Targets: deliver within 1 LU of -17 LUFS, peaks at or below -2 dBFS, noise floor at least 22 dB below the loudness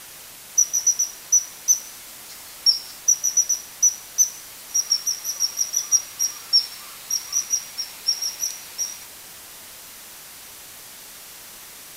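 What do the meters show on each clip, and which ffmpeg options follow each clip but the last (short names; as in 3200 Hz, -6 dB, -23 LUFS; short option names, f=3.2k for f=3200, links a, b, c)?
noise floor -42 dBFS; noise floor target -43 dBFS; loudness -20.5 LUFS; peak -6.0 dBFS; loudness target -17.0 LUFS
-> -af "afftdn=nr=6:nf=-42"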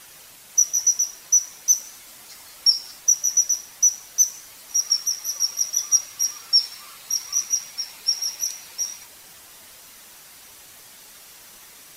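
noise floor -47 dBFS; loudness -20.5 LUFS; peak -6.0 dBFS; loudness target -17.0 LUFS
-> -af "volume=3.5dB"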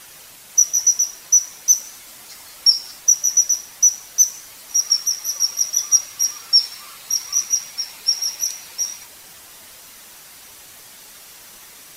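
loudness -17.0 LUFS; peak -2.5 dBFS; noise floor -43 dBFS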